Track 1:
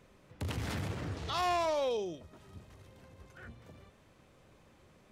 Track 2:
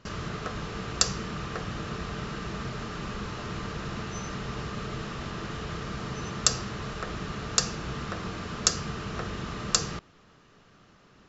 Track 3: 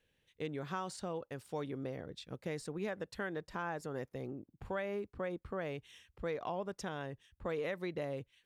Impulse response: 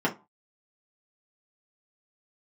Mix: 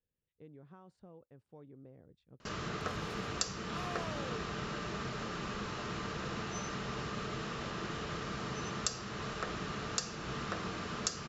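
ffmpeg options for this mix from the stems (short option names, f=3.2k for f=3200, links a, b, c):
-filter_complex "[0:a]adelay=2400,volume=-14dB[a];[1:a]lowshelf=f=110:g=-10,adelay=2400,volume=-2.5dB[b];[2:a]lowpass=f=1.1k:p=1,lowshelf=f=410:g=7.5,volume=-18dB[c];[a][b][c]amix=inputs=3:normalize=0,alimiter=limit=-13.5dB:level=0:latency=1:release=346"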